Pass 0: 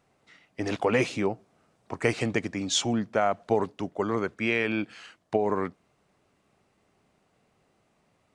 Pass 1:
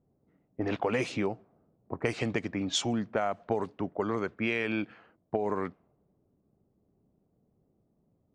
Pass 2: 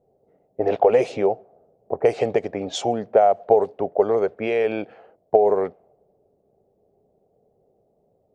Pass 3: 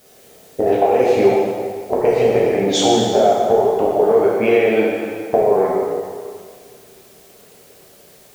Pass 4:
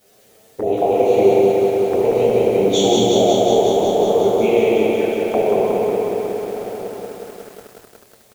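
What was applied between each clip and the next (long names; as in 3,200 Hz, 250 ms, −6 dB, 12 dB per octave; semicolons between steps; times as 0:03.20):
low-pass that shuts in the quiet parts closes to 350 Hz, open at −21 dBFS; downward compressor 3 to 1, threshold −28 dBFS, peak gain reduction 8 dB; level +1 dB
flat-topped bell 570 Hz +15.5 dB 1.3 octaves
downward compressor 5 to 1, threshold −24 dBFS, peak gain reduction 13 dB; background noise white −62 dBFS; dense smooth reverb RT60 2 s, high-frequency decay 0.85×, DRR −6 dB; level +7 dB
flanger swept by the level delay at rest 10.7 ms, full sweep at −15 dBFS; slap from a distant wall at 210 metres, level −13 dB; feedback echo at a low word length 183 ms, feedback 80%, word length 7 bits, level −3.5 dB; level −2 dB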